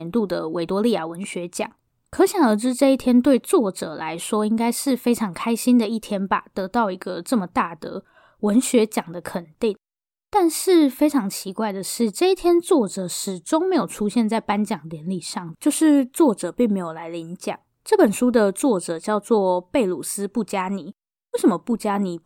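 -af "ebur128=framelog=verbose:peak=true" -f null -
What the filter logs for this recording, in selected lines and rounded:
Integrated loudness:
  I:         -21.4 LUFS
  Threshold: -31.6 LUFS
Loudness range:
  LRA:         3.1 LU
  Threshold: -41.5 LUFS
  LRA low:   -23.2 LUFS
  LRA high:  -20.1 LUFS
True peak:
  Peak:       -3.3 dBFS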